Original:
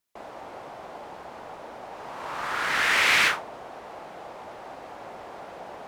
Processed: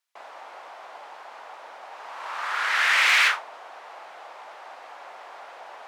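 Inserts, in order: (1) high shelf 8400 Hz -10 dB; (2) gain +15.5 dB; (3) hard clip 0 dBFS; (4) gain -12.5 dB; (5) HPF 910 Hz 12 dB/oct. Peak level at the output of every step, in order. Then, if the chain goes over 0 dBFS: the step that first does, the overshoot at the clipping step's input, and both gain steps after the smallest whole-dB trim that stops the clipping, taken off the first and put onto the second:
-9.5, +6.0, 0.0, -12.5, -8.0 dBFS; step 2, 6.0 dB; step 2 +9.5 dB, step 4 -6.5 dB

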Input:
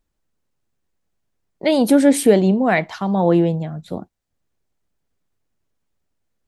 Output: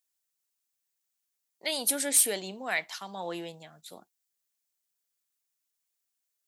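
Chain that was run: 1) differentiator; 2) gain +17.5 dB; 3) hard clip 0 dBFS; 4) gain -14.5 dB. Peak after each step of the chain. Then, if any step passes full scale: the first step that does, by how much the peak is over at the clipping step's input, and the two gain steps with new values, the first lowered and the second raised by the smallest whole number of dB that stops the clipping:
-10.5, +7.0, 0.0, -14.5 dBFS; step 2, 7.0 dB; step 2 +10.5 dB, step 4 -7.5 dB

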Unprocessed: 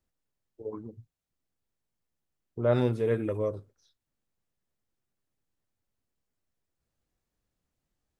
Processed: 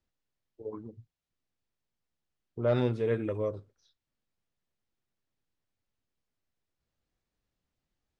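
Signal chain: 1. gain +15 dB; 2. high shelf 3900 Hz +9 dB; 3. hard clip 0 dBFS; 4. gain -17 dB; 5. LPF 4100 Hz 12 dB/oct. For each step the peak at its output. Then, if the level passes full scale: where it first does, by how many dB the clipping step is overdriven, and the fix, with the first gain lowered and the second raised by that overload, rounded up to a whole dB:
+4.0, +4.5, 0.0, -17.0, -17.0 dBFS; step 1, 4.5 dB; step 1 +10 dB, step 4 -12 dB

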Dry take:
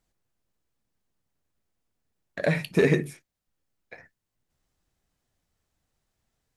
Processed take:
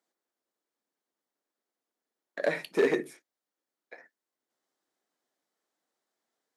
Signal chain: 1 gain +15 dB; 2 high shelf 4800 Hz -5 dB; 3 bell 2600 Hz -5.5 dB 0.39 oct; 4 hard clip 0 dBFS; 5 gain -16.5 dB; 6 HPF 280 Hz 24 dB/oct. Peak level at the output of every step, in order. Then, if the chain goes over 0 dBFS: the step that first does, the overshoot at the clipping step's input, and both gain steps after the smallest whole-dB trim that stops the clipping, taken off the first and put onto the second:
+6.5, +6.0, +6.0, 0.0, -16.5, -13.5 dBFS; step 1, 6.0 dB; step 1 +9 dB, step 5 -10.5 dB

